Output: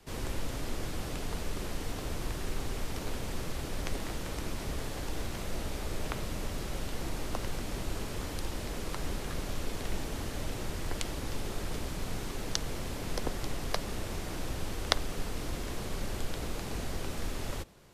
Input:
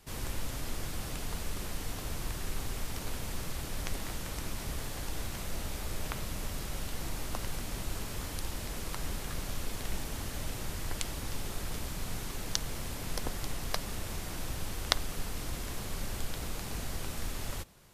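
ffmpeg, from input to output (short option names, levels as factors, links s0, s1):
-filter_complex "[0:a]highshelf=f=8900:g=-8.5,acrossover=split=310|500|6800[s0][s1][s2][s3];[s1]acontrast=86[s4];[s0][s4][s2][s3]amix=inputs=4:normalize=0,volume=1.12"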